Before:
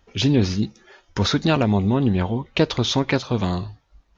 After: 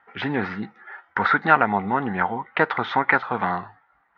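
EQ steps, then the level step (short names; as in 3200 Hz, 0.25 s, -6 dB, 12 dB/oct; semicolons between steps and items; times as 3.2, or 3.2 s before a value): speaker cabinet 170–3300 Hz, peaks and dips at 190 Hz +3 dB, 470 Hz +5 dB, 800 Hz +6 dB, 1400 Hz +9 dB, 2000 Hz +9 dB; band shelf 1200 Hz +12 dB; -8.0 dB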